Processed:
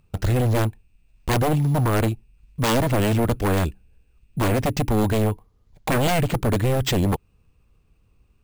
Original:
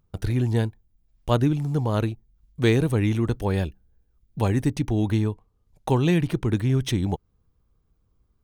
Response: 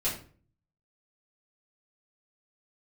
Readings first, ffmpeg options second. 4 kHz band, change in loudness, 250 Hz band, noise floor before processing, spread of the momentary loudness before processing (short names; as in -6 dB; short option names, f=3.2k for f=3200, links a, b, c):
+5.5 dB, +2.0 dB, +0.5 dB, -69 dBFS, 11 LU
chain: -af "acrusher=samples=4:mix=1:aa=0.000001,aeval=exprs='0.0891*(abs(mod(val(0)/0.0891+3,4)-2)-1)':c=same,volume=6.5dB"